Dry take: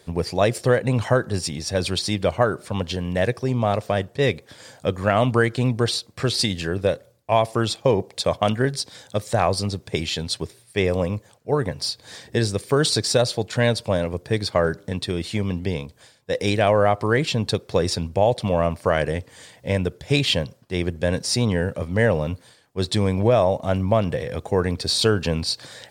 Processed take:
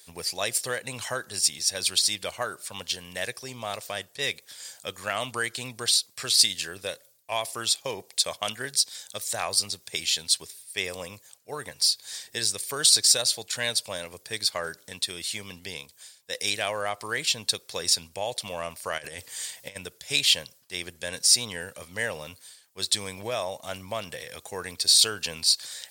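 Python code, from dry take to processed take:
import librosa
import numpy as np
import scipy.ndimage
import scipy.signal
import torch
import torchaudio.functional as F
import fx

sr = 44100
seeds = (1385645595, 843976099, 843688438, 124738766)

y = fx.over_compress(x, sr, threshold_db=-27.0, ratio=-0.5, at=(18.97, 19.75), fade=0.02)
y = scipy.signal.lfilter([1.0, -0.97], [1.0], y)
y = F.gain(torch.from_numpy(y), 7.5).numpy()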